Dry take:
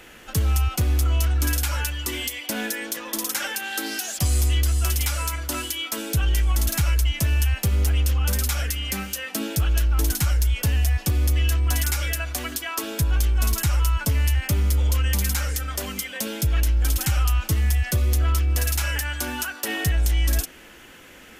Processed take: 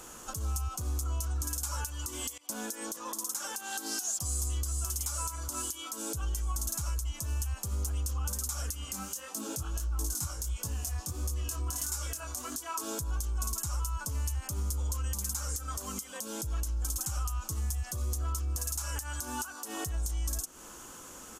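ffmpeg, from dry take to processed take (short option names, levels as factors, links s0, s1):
-filter_complex "[0:a]asplit=3[s0][s1][s2];[s0]afade=t=out:st=8.84:d=0.02[s3];[s1]flanger=delay=18:depth=6.4:speed=1.5,afade=t=in:st=8.84:d=0.02,afade=t=out:st=12.8:d=0.02[s4];[s2]afade=t=in:st=12.8:d=0.02[s5];[s3][s4][s5]amix=inputs=3:normalize=0,asplit=2[s6][s7];[s6]atrim=end=2.38,asetpts=PTS-STARTPTS,afade=t=out:st=2.376:d=0.004:c=hsin:silence=0.0749894[s8];[s7]atrim=start=2.38,asetpts=PTS-STARTPTS,afade=t=in:d=0.56:silence=0.0749894[s9];[s8][s9]concat=n=2:v=0:a=1,firequalizer=gain_entry='entry(680,0);entry(1100,8);entry(1900,-12);entry(6700,13);entry(14000,3)':delay=0.05:min_phase=1,acompressor=threshold=0.0447:ratio=6,alimiter=limit=0.112:level=0:latency=1:release=94,volume=0.708"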